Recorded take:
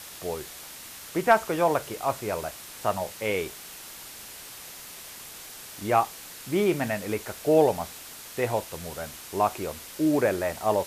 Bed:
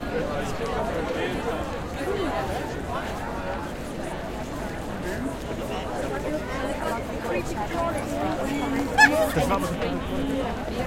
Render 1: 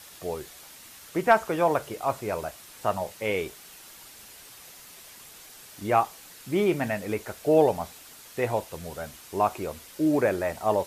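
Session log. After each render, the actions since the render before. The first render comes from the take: noise reduction 6 dB, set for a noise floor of -43 dBFS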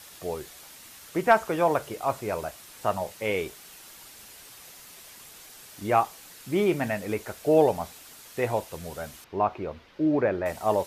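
9.24–10.46 s: distance through air 280 m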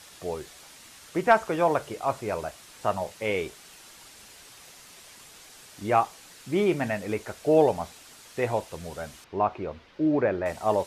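low-pass 9.8 kHz 12 dB/octave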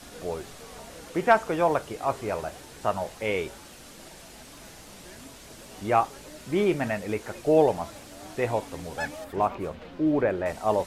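add bed -18 dB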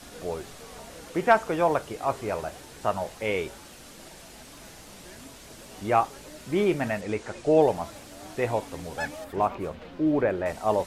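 7.01–7.62 s: low-pass 9 kHz 24 dB/octave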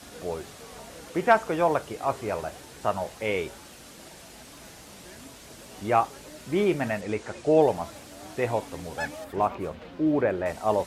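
high-pass 44 Hz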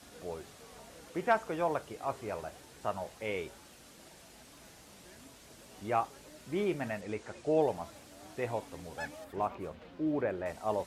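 trim -8.5 dB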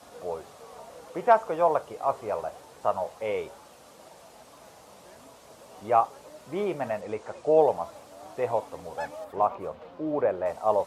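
high-pass 66 Hz; high-order bell 750 Hz +9.5 dB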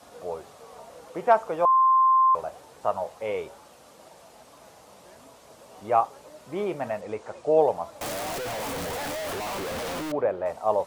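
1.65–2.35 s: bleep 1.05 kHz -15.5 dBFS; 8.01–10.12 s: one-bit comparator

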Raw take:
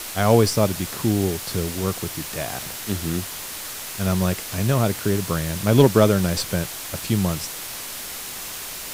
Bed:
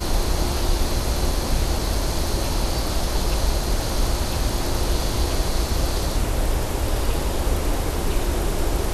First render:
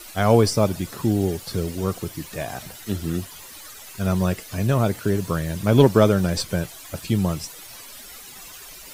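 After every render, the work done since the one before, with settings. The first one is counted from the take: noise reduction 13 dB, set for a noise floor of -34 dBFS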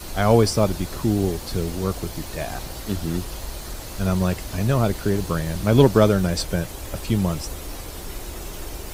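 add bed -12 dB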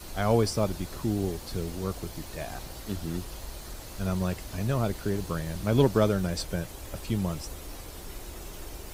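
trim -7.5 dB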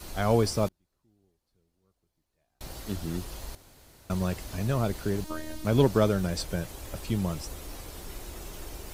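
0.68–2.61 s: inverted gate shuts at -36 dBFS, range -40 dB; 3.55–4.10 s: room tone; 5.24–5.65 s: robot voice 310 Hz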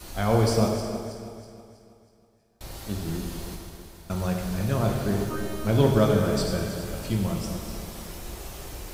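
backward echo that repeats 161 ms, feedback 66%, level -10 dB; plate-style reverb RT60 1.7 s, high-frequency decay 0.8×, DRR 1 dB

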